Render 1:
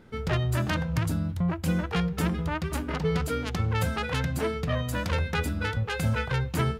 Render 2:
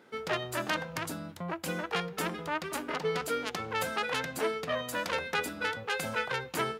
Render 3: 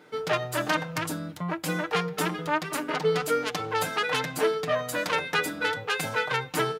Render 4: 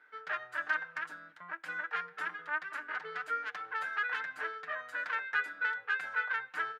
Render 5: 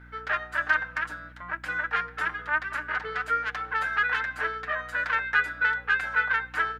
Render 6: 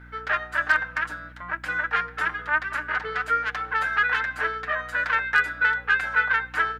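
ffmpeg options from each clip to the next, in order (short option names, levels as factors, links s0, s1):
-af "highpass=370"
-af "aecho=1:1:6.6:0.67,volume=1.5"
-af "bandpass=f=1600:t=q:w=4.5:csg=0"
-af "aeval=exprs='val(0)+0.00141*(sin(2*PI*60*n/s)+sin(2*PI*2*60*n/s)/2+sin(2*PI*3*60*n/s)/3+sin(2*PI*4*60*n/s)/4+sin(2*PI*5*60*n/s)/5)':c=same,volume=2.66"
-af "asoftclip=type=hard:threshold=0.224,volume=1.41"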